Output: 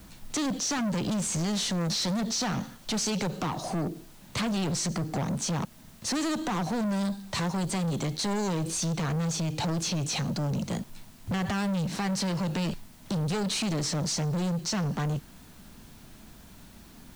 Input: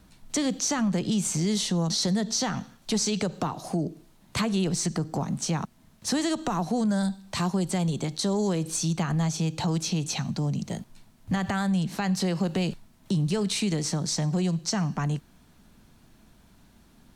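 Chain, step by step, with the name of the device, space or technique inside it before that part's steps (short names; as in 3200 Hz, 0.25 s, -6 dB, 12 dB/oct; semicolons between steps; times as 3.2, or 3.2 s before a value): compact cassette (soft clip -32.5 dBFS, distortion -7 dB; LPF 8800 Hz 12 dB/oct; wow and flutter; white noise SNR 28 dB); gain +6 dB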